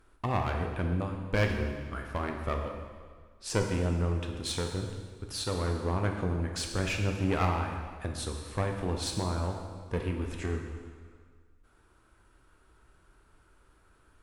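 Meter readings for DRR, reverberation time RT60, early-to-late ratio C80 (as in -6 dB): 2.5 dB, 1.7 s, 6.0 dB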